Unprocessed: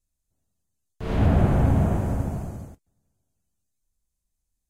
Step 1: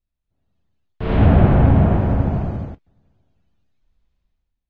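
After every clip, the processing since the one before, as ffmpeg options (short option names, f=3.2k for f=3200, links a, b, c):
-af "lowpass=f=3.7k:w=0.5412,lowpass=f=3.7k:w=1.3066,dynaudnorm=f=110:g=9:m=14.5dB,volume=-1dB"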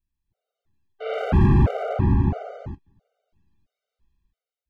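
-af "asoftclip=type=hard:threshold=-11.5dB,afftfilt=real='re*gt(sin(2*PI*1.5*pts/sr)*(1-2*mod(floor(b*sr/1024/390),2)),0)':imag='im*gt(sin(2*PI*1.5*pts/sr)*(1-2*mod(floor(b*sr/1024/390),2)),0)':win_size=1024:overlap=0.75"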